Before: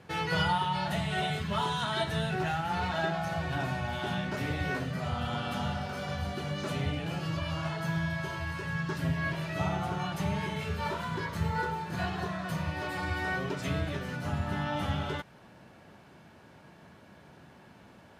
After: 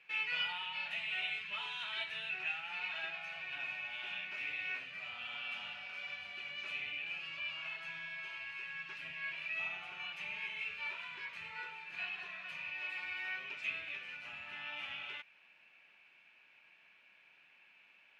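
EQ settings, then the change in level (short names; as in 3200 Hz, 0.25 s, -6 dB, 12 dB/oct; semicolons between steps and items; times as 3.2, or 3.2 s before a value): band-pass 2500 Hz, Q 10; +9.5 dB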